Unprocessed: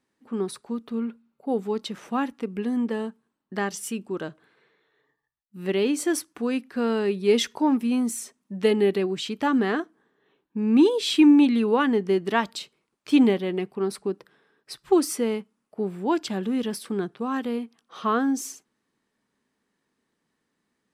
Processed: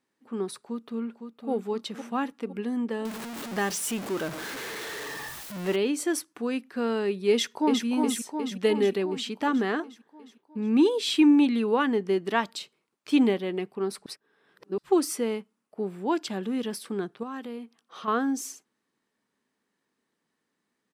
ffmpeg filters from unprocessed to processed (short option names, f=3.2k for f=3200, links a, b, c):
-filter_complex "[0:a]asplit=2[a][b];[b]afade=t=in:st=0.59:d=0.01,afade=t=out:st=1.5:d=0.01,aecho=0:1:510|1020|1530|2040|2550|3060:0.446684|0.223342|0.111671|0.0558354|0.0279177|0.0139589[c];[a][c]amix=inputs=2:normalize=0,asettb=1/sr,asplit=3[d][e][f];[d]atrim=end=3.054[g];[e]atrim=start=3.05:end=5.76,asetpts=PTS-STARTPTS,afade=t=in:d=0.004:c=qsin,afade=t=out:st=2.706:d=0.004:c=qsin,aeval=exprs='val(0)+0.5*0.0398*sgn(val(0))':c=same[h];[f]atrim=start=5.756[i];[g][h]acrossfade=d=0.004:c1=hsin:c2=qsin[j];[j][i]acrossfade=d=0.004:c1=qsin:c2=hsin,asplit=2[k][l];[l]afade=t=in:st=7.31:d=0.01,afade=t=out:st=7.85:d=0.01,aecho=0:1:360|720|1080|1440|1800|2160|2520|2880|3240|3600:0.630957|0.410122|0.266579|0.173277|0.11263|0.0732094|0.0475861|0.030931|0.0201051|0.0130683[m];[k][m]amix=inputs=2:normalize=0,asettb=1/sr,asplit=3[n][o][p];[n]atrim=end=17.234[q];[o]atrim=start=17.23:end=18.08,asetpts=PTS-STARTPTS,afade=t=in:d=0.004:c=qsin,afade=t=out:st=0.846:d=0.004:c=qsin,acompressor=threshold=-35dB:ratio=2:attack=3.2:release=140:knee=1:detection=peak[r];[p]atrim=start=18.076[s];[q][r]acrossfade=d=0.004:c1=hsin:c2=qsin[t];[t][s]acrossfade=d=0.004:c1=qsin:c2=hsin,asplit=3[u][v][w];[u]atrim=end=14.062[x];[v]atrim=start=14.058:end=14.782,asetpts=PTS-STARTPTS,areverse[y];[w]atrim=start=14.778[z];[x][y]acrossfade=d=0.004:c1=hsin:c2=hsin[aa];[aa][z]acrossfade=d=0.004:c1=hsin:c2=hsin,lowshelf=f=100:g=-12,volume=-2dB"